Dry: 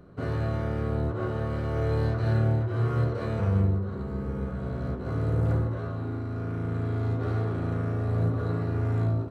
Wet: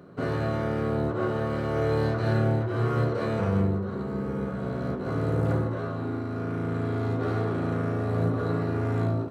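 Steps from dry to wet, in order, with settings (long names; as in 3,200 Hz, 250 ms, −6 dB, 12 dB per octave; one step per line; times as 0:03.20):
high-pass filter 150 Hz 12 dB per octave
level +4.5 dB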